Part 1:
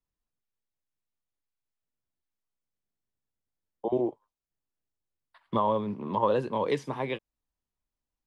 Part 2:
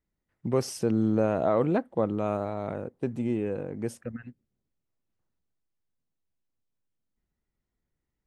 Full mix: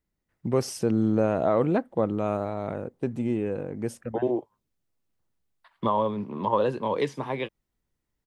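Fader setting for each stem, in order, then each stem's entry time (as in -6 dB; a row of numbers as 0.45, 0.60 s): +1.5, +1.5 dB; 0.30, 0.00 s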